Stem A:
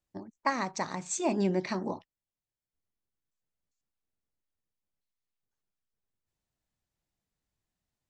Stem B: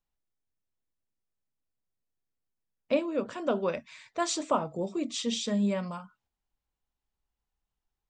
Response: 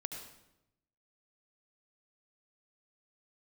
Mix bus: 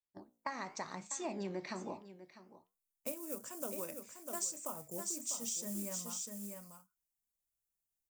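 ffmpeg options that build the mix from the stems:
-filter_complex "[0:a]agate=range=0.316:threshold=0.00891:ratio=16:detection=peak,flanger=delay=9.7:depth=9.7:regen=77:speed=0.93:shape=sinusoidal,lowshelf=f=350:g=-5,volume=0.794,asplit=2[s0][s1];[s1]volume=0.141[s2];[1:a]agate=range=0.501:threshold=0.00794:ratio=16:detection=peak,acrusher=bits=6:mode=log:mix=0:aa=0.000001,aexciter=amount=15.6:drive=3.9:freq=5700,adelay=150,volume=0.224,asplit=2[s3][s4];[s4]volume=0.422[s5];[s2][s5]amix=inputs=2:normalize=0,aecho=0:1:648:1[s6];[s0][s3][s6]amix=inputs=3:normalize=0,acompressor=threshold=0.0158:ratio=5"

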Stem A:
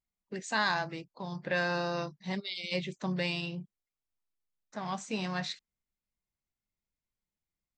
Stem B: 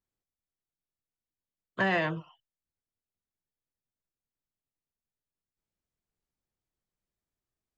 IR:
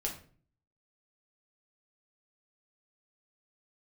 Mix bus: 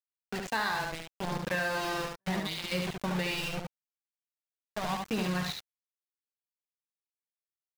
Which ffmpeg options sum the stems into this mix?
-filter_complex "[0:a]adynamicequalizer=threshold=0.00562:dfrequency=370:dqfactor=1:tfrequency=370:tqfactor=1:attack=5:release=100:ratio=0.375:range=2.5:mode=cutabove:tftype=bell,acrusher=bits=5:mix=0:aa=0.000001,aphaser=in_gain=1:out_gain=1:delay=2.7:decay=0.29:speed=0.77:type=triangular,volume=1.33,asplit=3[s0][s1][s2];[s1]volume=0.596[s3];[1:a]equalizer=f=4300:t=o:w=2:g=-14.5,adelay=400,volume=0.335[s4];[s2]apad=whole_len=360358[s5];[s4][s5]sidechaingate=range=0.00251:threshold=0.0112:ratio=16:detection=peak[s6];[s3]aecho=0:1:72:1[s7];[s0][s6][s7]amix=inputs=3:normalize=0,highshelf=f=6300:g=-10,acompressor=threshold=0.0447:ratio=6"

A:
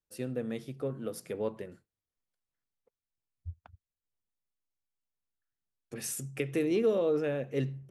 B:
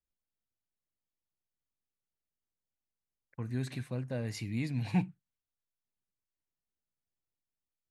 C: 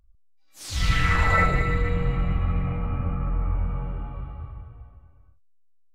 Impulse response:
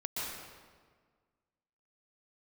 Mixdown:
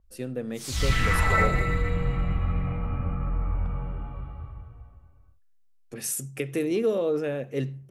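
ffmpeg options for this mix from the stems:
-filter_complex "[0:a]volume=1.33[s0];[2:a]volume=0.794[s1];[s0][s1]amix=inputs=2:normalize=0,adynamicequalizer=threshold=0.00447:dfrequency=6200:dqfactor=0.7:tfrequency=6200:tqfactor=0.7:attack=5:release=100:ratio=0.375:range=3:mode=boostabove:tftype=highshelf"

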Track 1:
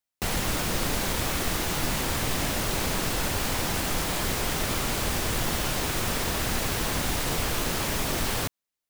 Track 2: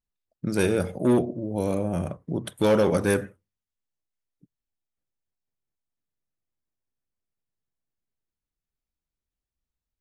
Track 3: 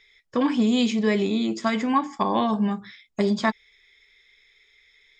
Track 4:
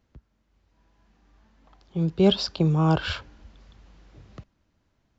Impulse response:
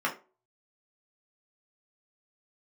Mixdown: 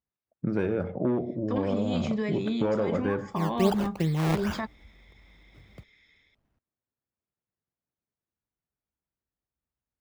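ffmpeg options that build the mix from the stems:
-filter_complex "[1:a]lowpass=2000,volume=1.19[s0];[2:a]alimiter=limit=0.126:level=0:latency=1:release=139,dynaudnorm=f=100:g=5:m=1.88,adelay=1150,volume=0.422[s1];[3:a]acrusher=samples=20:mix=1:aa=0.000001:lfo=1:lforange=20:lforate=2.5,adelay=1400,volume=0.562[s2];[s0][s1]amix=inputs=2:normalize=0,highpass=74,acompressor=threshold=0.0708:ratio=6,volume=1[s3];[s2][s3]amix=inputs=2:normalize=0,equalizer=f=11000:t=o:w=2.3:g=-6.5"

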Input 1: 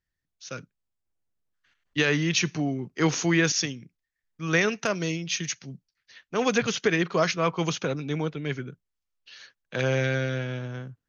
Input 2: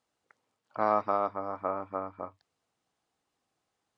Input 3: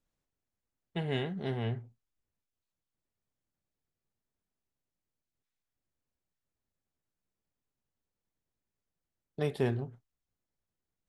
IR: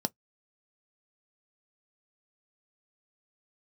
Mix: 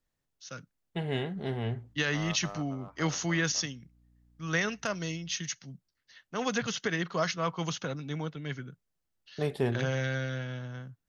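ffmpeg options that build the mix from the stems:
-filter_complex "[0:a]equalizer=f=390:w=1.7:g=-6.5,bandreject=f=2400:w=7.5,volume=0.596[s0];[1:a]aeval=exprs='clip(val(0),-1,0.0376)':c=same,aeval=exprs='val(0)+0.00355*(sin(2*PI*60*n/s)+sin(2*PI*2*60*n/s)/2+sin(2*PI*3*60*n/s)/3+sin(2*PI*4*60*n/s)/4+sin(2*PI*5*60*n/s)/5)':c=same,adelay=1350,volume=0.211[s1];[2:a]volume=1.12[s2];[s0][s1][s2]amix=inputs=3:normalize=0"

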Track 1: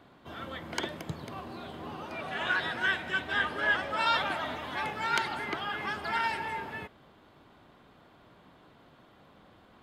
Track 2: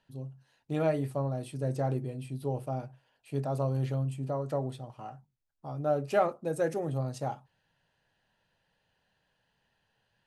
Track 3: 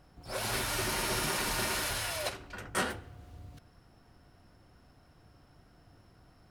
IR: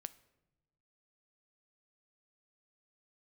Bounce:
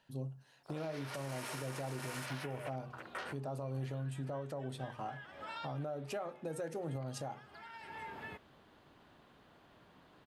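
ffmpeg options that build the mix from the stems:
-filter_complex "[0:a]acompressor=threshold=0.0158:ratio=12,adelay=1500,volume=0.473,asplit=2[s0][s1];[s1]volume=0.211[s2];[1:a]lowshelf=f=73:g=-9,volume=1.26,asplit=3[s3][s4][s5];[s4]volume=0.224[s6];[2:a]adynamicequalizer=threshold=0.00355:dfrequency=4200:dqfactor=1.3:tfrequency=4200:tqfactor=1.3:attack=5:release=100:ratio=0.375:range=2.5:mode=cutabove:tftype=bell,highpass=420,afwtdn=0.00794,adelay=400,volume=0.944[s7];[s5]apad=whole_len=499545[s8];[s0][s8]sidechaincompress=threshold=0.00501:ratio=8:attack=16:release=554[s9];[s3][s7]amix=inputs=2:normalize=0,bandreject=f=60:t=h:w=6,bandreject=f=120:t=h:w=6,bandreject=f=180:t=h:w=6,bandreject=f=240:t=h:w=6,bandreject=f=300:t=h:w=6,bandreject=f=360:t=h:w=6,bandreject=f=420:t=h:w=6,bandreject=f=480:t=h:w=6,acompressor=threshold=0.0158:ratio=4,volume=1[s10];[3:a]atrim=start_sample=2205[s11];[s2][s6]amix=inputs=2:normalize=0[s12];[s12][s11]afir=irnorm=-1:irlink=0[s13];[s9][s10][s13]amix=inputs=3:normalize=0,alimiter=level_in=2.37:limit=0.0631:level=0:latency=1:release=210,volume=0.422"

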